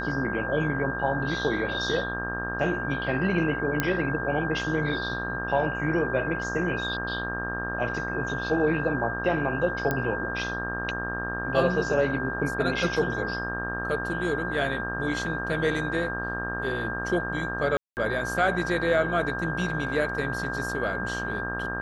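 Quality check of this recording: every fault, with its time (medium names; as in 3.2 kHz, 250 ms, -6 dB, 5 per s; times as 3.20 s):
buzz 60 Hz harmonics 29 -34 dBFS
whine 1.6 kHz -31 dBFS
3.80 s: pop -9 dBFS
9.91 s: pop -13 dBFS
17.77–17.97 s: dropout 199 ms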